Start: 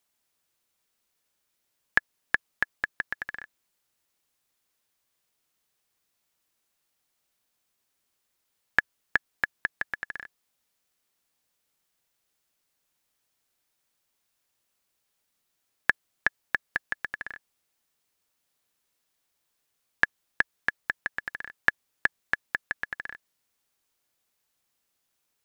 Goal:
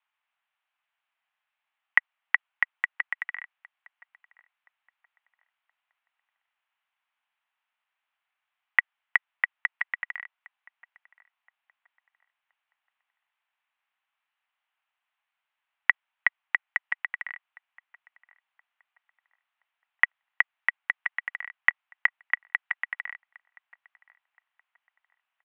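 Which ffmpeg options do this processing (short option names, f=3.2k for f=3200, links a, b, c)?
-filter_complex "[0:a]asplit=2[a][b];[b]adelay=1023,lowpass=f=1.1k:p=1,volume=-21.5dB,asplit=2[c][d];[d]adelay=1023,lowpass=f=1.1k:p=1,volume=0.42,asplit=2[e][f];[f]adelay=1023,lowpass=f=1.1k:p=1,volume=0.42[g];[c][e][g]amix=inputs=3:normalize=0[h];[a][h]amix=inputs=2:normalize=0,highpass=f=520:t=q:w=0.5412,highpass=f=520:t=q:w=1.307,lowpass=f=2.8k:t=q:w=0.5176,lowpass=f=2.8k:t=q:w=0.7071,lowpass=f=2.8k:t=q:w=1.932,afreqshift=230,volume=2dB"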